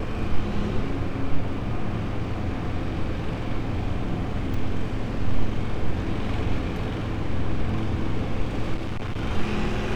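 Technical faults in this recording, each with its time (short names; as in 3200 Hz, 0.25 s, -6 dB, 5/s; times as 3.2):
4.54 gap 3.3 ms
8.74–9.23 clipped -24.5 dBFS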